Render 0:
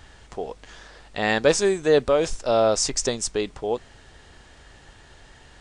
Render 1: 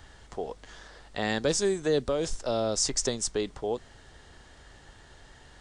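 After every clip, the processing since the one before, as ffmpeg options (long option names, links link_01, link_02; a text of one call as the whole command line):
ffmpeg -i in.wav -filter_complex "[0:a]equalizer=frequency=2500:width=5:gain=-5,acrossover=split=360|3000[link_01][link_02][link_03];[link_02]acompressor=threshold=-26dB:ratio=6[link_04];[link_01][link_04][link_03]amix=inputs=3:normalize=0,volume=-3dB" out.wav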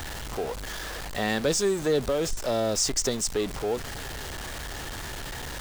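ffmpeg -i in.wav -af "aeval=exprs='val(0)+0.5*0.0282*sgn(val(0))':channel_layout=same" out.wav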